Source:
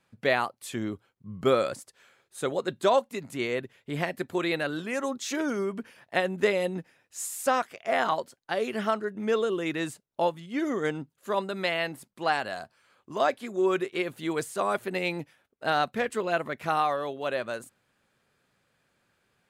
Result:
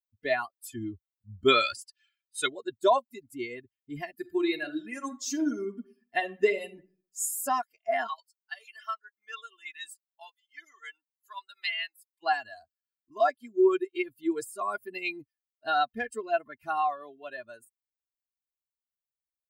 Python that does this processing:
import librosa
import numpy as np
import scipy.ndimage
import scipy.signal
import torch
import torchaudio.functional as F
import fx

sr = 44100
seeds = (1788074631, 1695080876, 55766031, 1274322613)

y = fx.peak_eq(x, sr, hz=2900.0, db=13.0, octaves=2.3, at=(1.48, 2.48))
y = fx.reverb_throw(y, sr, start_s=4.13, length_s=3.22, rt60_s=0.83, drr_db=6.0)
y = fx.highpass(y, sr, hz=1200.0, slope=12, at=(8.07, 12.22), fade=0.02)
y = fx.bin_expand(y, sr, power=2.0)
y = fx.high_shelf(y, sr, hz=9100.0, db=7.5)
y = y + 0.87 * np.pad(y, (int(2.9 * sr / 1000.0), 0))[:len(y)]